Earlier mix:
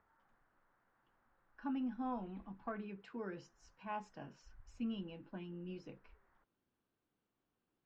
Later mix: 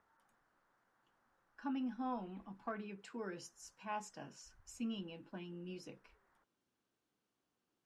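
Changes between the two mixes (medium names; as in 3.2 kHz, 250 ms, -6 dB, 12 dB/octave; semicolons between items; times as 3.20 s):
speech: remove distance through air 200 m; master: add bass shelf 76 Hz -11.5 dB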